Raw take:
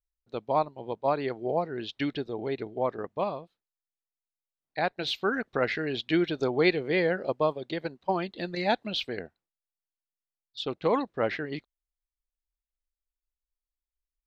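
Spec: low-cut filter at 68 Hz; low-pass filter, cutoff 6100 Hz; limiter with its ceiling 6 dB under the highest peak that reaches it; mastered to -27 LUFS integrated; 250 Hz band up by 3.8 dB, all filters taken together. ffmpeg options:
-af "highpass=68,lowpass=6.1k,equalizer=f=250:t=o:g=5.5,volume=2.5dB,alimiter=limit=-12.5dB:level=0:latency=1"

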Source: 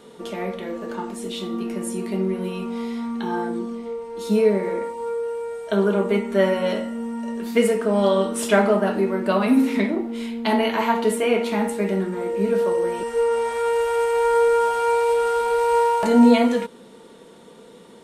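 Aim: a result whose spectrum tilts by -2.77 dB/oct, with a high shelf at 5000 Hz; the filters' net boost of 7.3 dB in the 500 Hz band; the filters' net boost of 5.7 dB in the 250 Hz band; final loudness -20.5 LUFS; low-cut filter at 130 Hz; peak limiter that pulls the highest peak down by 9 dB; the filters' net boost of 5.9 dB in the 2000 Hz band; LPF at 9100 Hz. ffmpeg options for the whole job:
-af "highpass=130,lowpass=9.1k,equalizer=f=250:t=o:g=5.5,equalizer=f=500:t=o:g=6.5,equalizer=f=2k:t=o:g=6,highshelf=f=5k:g=6,volume=-4dB,alimiter=limit=-10.5dB:level=0:latency=1"

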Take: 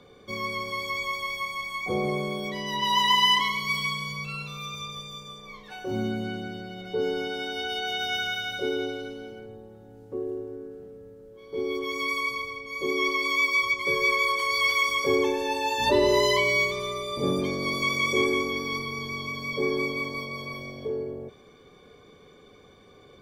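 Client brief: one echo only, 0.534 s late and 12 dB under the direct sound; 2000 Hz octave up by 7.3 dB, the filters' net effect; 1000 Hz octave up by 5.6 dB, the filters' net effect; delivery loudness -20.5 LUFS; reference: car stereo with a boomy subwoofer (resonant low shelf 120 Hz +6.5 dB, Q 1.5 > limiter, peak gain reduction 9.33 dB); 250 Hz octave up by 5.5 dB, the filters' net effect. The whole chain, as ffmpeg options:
-af "lowshelf=f=120:t=q:w=1.5:g=6.5,equalizer=f=250:t=o:g=8.5,equalizer=f=1k:t=o:g=4,equalizer=f=2k:t=o:g=7.5,aecho=1:1:534:0.251,volume=2.5dB,alimiter=limit=-11.5dB:level=0:latency=1"

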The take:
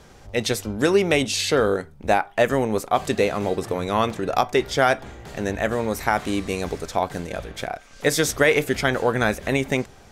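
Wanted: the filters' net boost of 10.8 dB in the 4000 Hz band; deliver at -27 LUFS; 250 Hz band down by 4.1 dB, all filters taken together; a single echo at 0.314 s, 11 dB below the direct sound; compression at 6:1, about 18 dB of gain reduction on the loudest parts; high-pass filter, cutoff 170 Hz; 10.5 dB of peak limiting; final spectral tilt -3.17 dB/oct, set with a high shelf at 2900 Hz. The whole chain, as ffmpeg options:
-af "highpass=170,equalizer=f=250:t=o:g=-4.5,highshelf=f=2.9k:g=8,equalizer=f=4k:t=o:g=7,acompressor=threshold=-32dB:ratio=6,alimiter=limit=-24dB:level=0:latency=1,aecho=1:1:314:0.282,volume=9.5dB"

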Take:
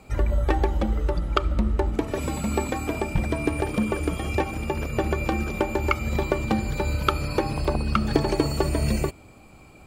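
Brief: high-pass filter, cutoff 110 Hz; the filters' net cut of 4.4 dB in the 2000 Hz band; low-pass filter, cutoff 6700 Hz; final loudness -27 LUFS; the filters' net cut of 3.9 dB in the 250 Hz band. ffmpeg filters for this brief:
-af "highpass=110,lowpass=6.7k,equalizer=f=250:t=o:g=-5,equalizer=f=2k:t=o:g=-5.5,volume=2.5dB"

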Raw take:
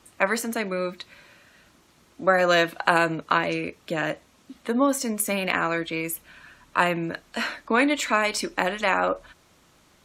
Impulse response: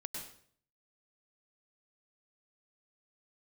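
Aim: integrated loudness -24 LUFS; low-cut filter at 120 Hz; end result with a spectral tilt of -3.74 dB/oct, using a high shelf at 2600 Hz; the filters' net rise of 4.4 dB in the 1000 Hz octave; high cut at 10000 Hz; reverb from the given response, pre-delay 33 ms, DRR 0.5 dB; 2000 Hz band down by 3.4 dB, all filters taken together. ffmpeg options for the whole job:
-filter_complex "[0:a]highpass=120,lowpass=10k,equalizer=f=1k:t=o:g=8,equalizer=f=2k:t=o:g=-5,highshelf=f=2.6k:g=-7.5,asplit=2[a][b];[1:a]atrim=start_sample=2205,adelay=33[c];[b][c]afir=irnorm=-1:irlink=0,volume=1dB[d];[a][d]amix=inputs=2:normalize=0,volume=-3.5dB"

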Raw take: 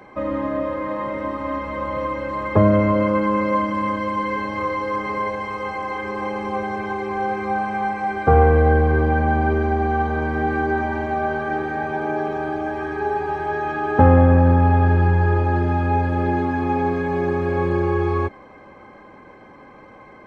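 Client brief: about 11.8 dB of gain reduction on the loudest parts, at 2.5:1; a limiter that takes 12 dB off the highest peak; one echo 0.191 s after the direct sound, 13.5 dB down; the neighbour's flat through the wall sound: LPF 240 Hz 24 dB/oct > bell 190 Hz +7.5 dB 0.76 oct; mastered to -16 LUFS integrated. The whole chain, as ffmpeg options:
-af "acompressor=threshold=-27dB:ratio=2.5,alimiter=limit=-23.5dB:level=0:latency=1,lowpass=f=240:w=0.5412,lowpass=f=240:w=1.3066,equalizer=f=190:t=o:w=0.76:g=7.5,aecho=1:1:191:0.211,volume=19.5dB"

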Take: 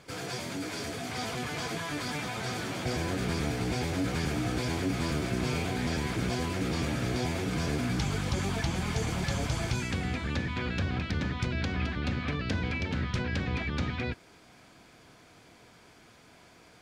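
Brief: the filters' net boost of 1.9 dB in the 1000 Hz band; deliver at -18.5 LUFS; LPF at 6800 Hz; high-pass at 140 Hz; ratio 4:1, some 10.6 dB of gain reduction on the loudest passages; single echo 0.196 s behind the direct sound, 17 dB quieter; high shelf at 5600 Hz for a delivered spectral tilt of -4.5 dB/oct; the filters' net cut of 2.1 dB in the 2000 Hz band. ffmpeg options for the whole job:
-af "highpass=140,lowpass=6.8k,equalizer=f=1k:t=o:g=3.5,equalizer=f=2k:t=o:g=-4.5,highshelf=f=5.6k:g=6,acompressor=threshold=-41dB:ratio=4,aecho=1:1:196:0.141,volume=24dB"

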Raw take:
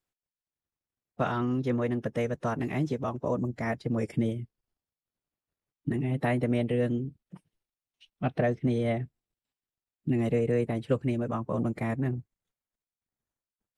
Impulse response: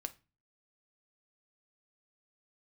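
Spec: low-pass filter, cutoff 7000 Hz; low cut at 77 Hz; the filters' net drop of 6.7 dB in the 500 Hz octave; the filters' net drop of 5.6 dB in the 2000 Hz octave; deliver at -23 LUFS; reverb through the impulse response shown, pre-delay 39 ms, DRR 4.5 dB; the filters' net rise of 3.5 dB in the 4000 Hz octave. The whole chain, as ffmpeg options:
-filter_complex "[0:a]highpass=77,lowpass=7k,equalizer=f=500:t=o:g=-8,equalizer=f=2k:t=o:g=-8.5,equalizer=f=4k:t=o:g=9,asplit=2[a][b];[1:a]atrim=start_sample=2205,adelay=39[c];[b][c]afir=irnorm=-1:irlink=0,volume=-2.5dB[d];[a][d]amix=inputs=2:normalize=0,volume=8.5dB"

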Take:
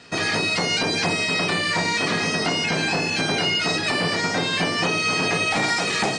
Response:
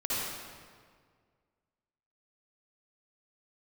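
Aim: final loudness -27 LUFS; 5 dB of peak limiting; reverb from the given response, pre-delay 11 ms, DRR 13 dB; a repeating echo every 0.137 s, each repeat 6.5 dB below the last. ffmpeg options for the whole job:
-filter_complex "[0:a]alimiter=limit=-16.5dB:level=0:latency=1,aecho=1:1:137|274|411|548|685|822:0.473|0.222|0.105|0.0491|0.0231|0.0109,asplit=2[a][b];[1:a]atrim=start_sample=2205,adelay=11[c];[b][c]afir=irnorm=-1:irlink=0,volume=-21dB[d];[a][d]amix=inputs=2:normalize=0,volume=-4.5dB"

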